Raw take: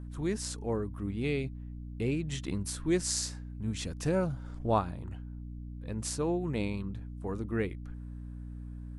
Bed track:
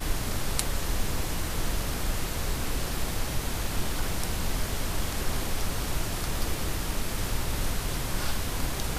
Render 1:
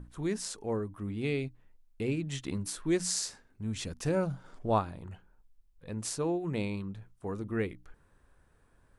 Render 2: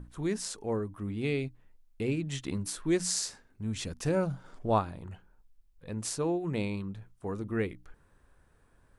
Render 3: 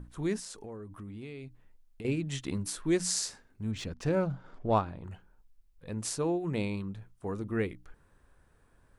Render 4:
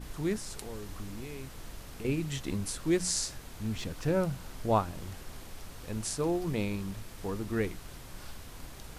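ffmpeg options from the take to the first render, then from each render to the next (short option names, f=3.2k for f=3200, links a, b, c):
-af "bandreject=f=60:t=h:w=6,bandreject=f=120:t=h:w=6,bandreject=f=180:t=h:w=6,bandreject=f=240:t=h:w=6,bandreject=f=300:t=h:w=6"
-af "volume=1dB"
-filter_complex "[0:a]asettb=1/sr,asplit=3[a][b][c];[a]atrim=end=0.394[d];[b]atrim=start=0.39:end=2.05,asetpts=PTS-STARTPTS,afade=t=in:d=0.004:c=qsin,afade=t=out:st=1.656:d=0.004:c=qsin,acompressor=threshold=-40dB:ratio=6:attack=3.2:release=140:knee=1:detection=peak[e];[c]atrim=start=2.046[f];[d][e]acrossfade=d=0.004:c1=hsin:c2=qsin[g];[g][f]acrossfade=d=0.004:c1=qsin:c2=hsin,asettb=1/sr,asplit=3[h][i][j];[h]atrim=end=3.714[k];[i]atrim=start=3.71:end=5.04,asetpts=PTS-STARTPTS,afade=t=in:d=0.004:c=qsin,afade=t=out:st=1.326:d=0.004:c=qsin,adynamicsmooth=sensitivity=5:basefreq=4.3k[l];[j]atrim=start=5.036[m];[k][l]acrossfade=d=0.004:c1=hsin:c2=qsin[n];[n][m]acrossfade=d=0.004:c1=qsin:c2=hsin"
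-filter_complex "[1:a]volume=-16dB[a];[0:a][a]amix=inputs=2:normalize=0"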